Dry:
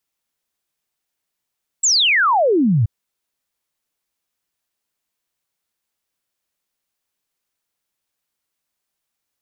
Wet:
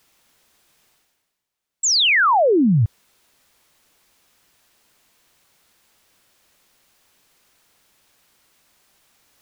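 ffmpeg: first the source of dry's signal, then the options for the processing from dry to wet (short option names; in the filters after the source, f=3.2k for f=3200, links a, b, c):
-f lavfi -i "aevalsrc='0.251*clip(min(t,1.03-t)/0.01,0,1)*sin(2*PI*7900*1.03/log(99/7900)*(exp(log(99/7900)*t/1.03)-1))':d=1.03:s=44100"
-af "areverse,acompressor=mode=upward:threshold=-40dB:ratio=2.5,areverse,highshelf=f=6.7k:g=-5.5"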